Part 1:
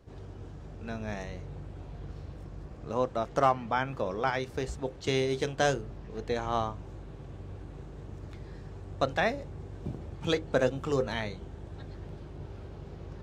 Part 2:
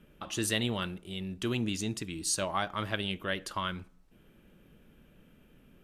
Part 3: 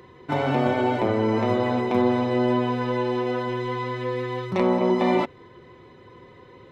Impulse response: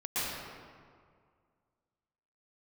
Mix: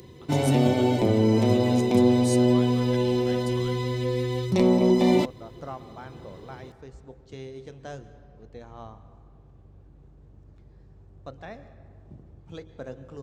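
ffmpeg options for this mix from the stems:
-filter_complex "[0:a]lowpass=frequency=1300:poles=1,adelay=2250,volume=-13dB,asplit=2[link_01][link_02];[link_02]volume=-20dB[link_03];[1:a]volume=-14dB[link_04];[2:a]equalizer=frequency=1300:width_type=o:width=1.5:gain=-13,volume=2dB[link_05];[3:a]atrim=start_sample=2205[link_06];[link_03][link_06]afir=irnorm=-1:irlink=0[link_07];[link_01][link_04][link_05][link_07]amix=inputs=4:normalize=0,bass=frequency=250:gain=4,treble=frequency=4000:gain=11"

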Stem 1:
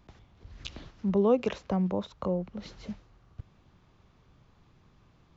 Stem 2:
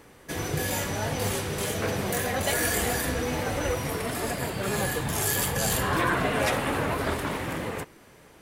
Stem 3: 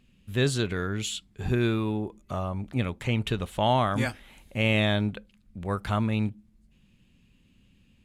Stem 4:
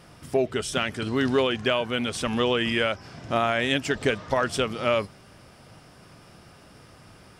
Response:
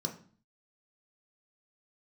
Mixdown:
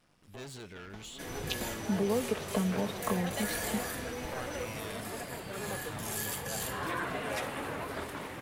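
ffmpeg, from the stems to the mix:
-filter_complex "[0:a]aecho=1:1:4.6:0.97,acompressor=threshold=-29dB:ratio=6,adelay=850,volume=2.5dB[link_01];[1:a]adelay=900,volume=-9.5dB[link_02];[2:a]asoftclip=type=hard:threshold=-28dB,volume=-13dB,asplit=2[link_03][link_04];[3:a]acrossover=split=5800[link_05][link_06];[link_06]acompressor=threshold=-55dB:ratio=4:attack=1:release=60[link_07];[link_05][link_07]amix=inputs=2:normalize=0,aeval=exprs='max(val(0),0)':channel_layout=same,volume=-14dB[link_08];[link_04]apad=whole_len=326290[link_09];[link_08][link_09]sidechaincompress=threshold=-54dB:ratio=8:attack=7.9:release=312[link_10];[link_01][link_02][link_03][link_10]amix=inputs=4:normalize=0,lowshelf=frequency=150:gain=-6.5"

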